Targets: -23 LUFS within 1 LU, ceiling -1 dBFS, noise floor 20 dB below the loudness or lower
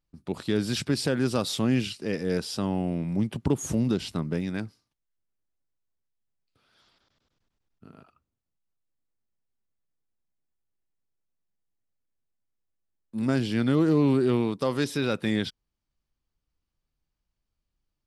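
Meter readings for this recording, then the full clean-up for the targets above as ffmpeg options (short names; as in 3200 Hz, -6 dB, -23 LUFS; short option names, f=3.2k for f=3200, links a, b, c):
loudness -27.0 LUFS; peak -11.5 dBFS; loudness target -23.0 LUFS
-> -af "volume=4dB"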